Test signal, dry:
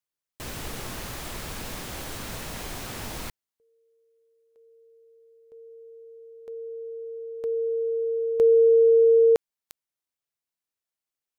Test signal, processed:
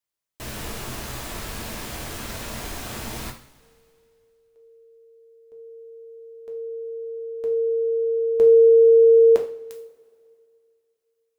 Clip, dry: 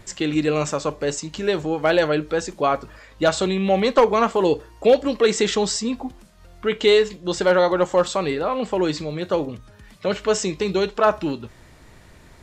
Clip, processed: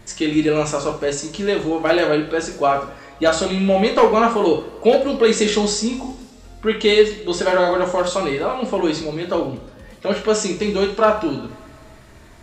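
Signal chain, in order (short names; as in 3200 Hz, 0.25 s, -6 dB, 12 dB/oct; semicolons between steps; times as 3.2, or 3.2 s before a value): two-slope reverb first 0.42 s, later 2.4 s, from -21 dB, DRR 1 dB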